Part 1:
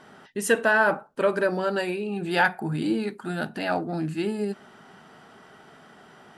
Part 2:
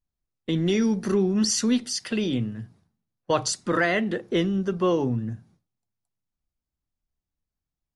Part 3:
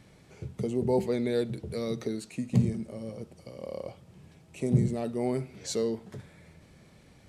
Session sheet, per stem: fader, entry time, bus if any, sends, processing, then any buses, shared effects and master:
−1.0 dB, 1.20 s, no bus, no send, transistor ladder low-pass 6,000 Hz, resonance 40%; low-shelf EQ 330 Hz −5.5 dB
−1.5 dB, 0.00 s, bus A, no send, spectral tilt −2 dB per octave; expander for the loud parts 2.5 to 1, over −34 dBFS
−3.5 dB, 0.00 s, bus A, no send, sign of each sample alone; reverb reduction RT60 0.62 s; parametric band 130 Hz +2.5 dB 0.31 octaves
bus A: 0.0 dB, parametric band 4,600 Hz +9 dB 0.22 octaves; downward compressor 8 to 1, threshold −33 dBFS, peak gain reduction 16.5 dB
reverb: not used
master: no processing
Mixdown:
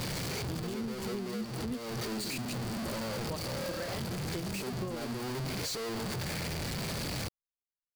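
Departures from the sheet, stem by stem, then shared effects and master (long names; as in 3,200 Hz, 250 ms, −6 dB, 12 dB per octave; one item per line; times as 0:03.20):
stem 1: muted
stem 2 −1.5 dB → −10.0 dB
stem 3: missing reverb reduction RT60 0.62 s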